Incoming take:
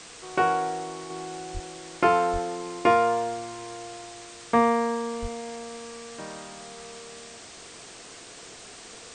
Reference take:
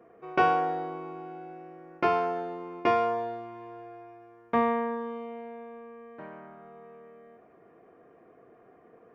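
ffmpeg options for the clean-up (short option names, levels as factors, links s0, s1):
-filter_complex "[0:a]asplit=3[s0][s1][s2];[s0]afade=t=out:st=1.53:d=0.02[s3];[s1]highpass=f=140:w=0.5412,highpass=f=140:w=1.3066,afade=t=in:st=1.53:d=0.02,afade=t=out:st=1.65:d=0.02[s4];[s2]afade=t=in:st=1.65:d=0.02[s5];[s3][s4][s5]amix=inputs=3:normalize=0,asplit=3[s6][s7][s8];[s6]afade=t=out:st=2.32:d=0.02[s9];[s7]highpass=f=140:w=0.5412,highpass=f=140:w=1.3066,afade=t=in:st=2.32:d=0.02,afade=t=out:st=2.44:d=0.02[s10];[s8]afade=t=in:st=2.44:d=0.02[s11];[s9][s10][s11]amix=inputs=3:normalize=0,asplit=3[s12][s13][s14];[s12]afade=t=out:st=5.21:d=0.02[s15];[s13]highpass=f=140:w=0.5412,highpass=f=140:w=1.3066,afade=t=in:st=5.21:d=0.02,afade=t=out:st=5.33:d=0.02[s16];[s14]afade=t=in:st=5.33:d=0.02[s17];[s15][s16][s17]amix=inputs=3:normalize=0,afwtdn=0.0079,asetnsamples=n=441:p=0,asendcmd='1.1 volume volume -4.5dB',volume=1"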